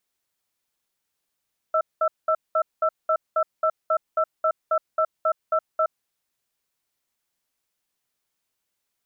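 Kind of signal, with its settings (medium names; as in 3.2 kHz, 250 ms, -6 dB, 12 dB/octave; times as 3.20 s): cadence 634 Hz, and 1.33 kHz, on 0.07 s, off 0.20 s, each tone -20.5 dBFS 4.13 s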